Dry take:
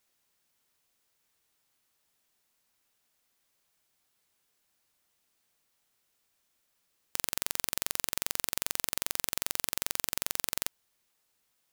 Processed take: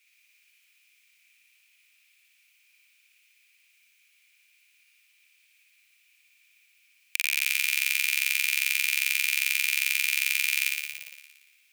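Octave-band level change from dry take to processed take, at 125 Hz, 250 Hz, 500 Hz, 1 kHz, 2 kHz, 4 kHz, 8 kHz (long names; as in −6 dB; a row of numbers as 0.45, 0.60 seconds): below −40 dB, below −35 dB, below −20 dB, −8.5 dB, +17.5 dB, +8.5 dB, +4.0 dB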